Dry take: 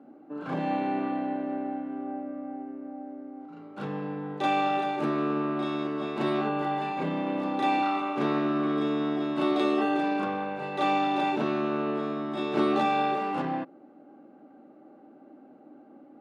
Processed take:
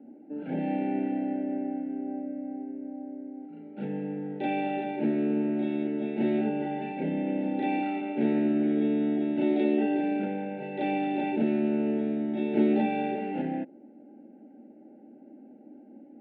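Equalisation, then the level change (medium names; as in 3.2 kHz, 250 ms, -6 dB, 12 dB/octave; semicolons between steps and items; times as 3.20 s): Butterworth band-stop 1.1 kHz, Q 0.74; cabinet simulation 160–2600 Hz, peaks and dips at 220 Hz +9 dB, 970 Hz +4 dB, 1.4 kHz +4 dB; peaking EQ 870 Hz +11.5 dB 0.21 oct; 0.0 dB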